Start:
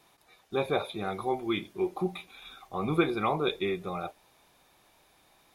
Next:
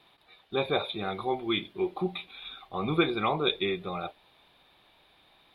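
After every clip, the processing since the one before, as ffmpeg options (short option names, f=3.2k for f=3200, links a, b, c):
-af "highshelf=f=4.8k:t=q:w=3:g=-10"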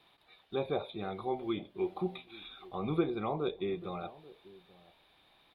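-filter_complex "[0:a]acrossover=split=890[a][b];[a]aecho=1:1:836:0.1[c];[b]acompressor=threshold=-42dB:ratio=6[d];[c][d]amix=inputs=2:normalize=0,volume=-4dB"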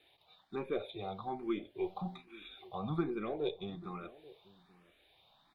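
-filter_complex "[0:a]aeval=exprs='0.133*(cos(1*acos(clip(val(0)/0.133,-1,1)))-cos(1*PI/2))+0.00596*(cos(4*acos(clip(val(0)/0.133,-1,1)))-cos(4*PI/2))':c=same,asplit=2[a][b];[b]afreqshift=1.2[c];[a][c]amix=inputs=2:normalize=1"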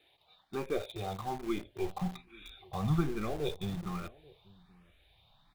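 -filter_complex "[0:a]asubboost=boost=8:cutoff=120,asplit=2[a][b];[b]acrusher=bits=6:mix=0:aa=0.000001,volume=-6.5dB[c];[a][c]amix=inputs=2:normalize=0"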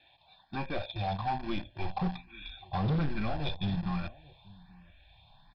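-af "aecho=1:1:1.2:0.99,aresample=11025,asoftclip=type=hard:threshold=-28dB,aresample=44100,volume=2dB"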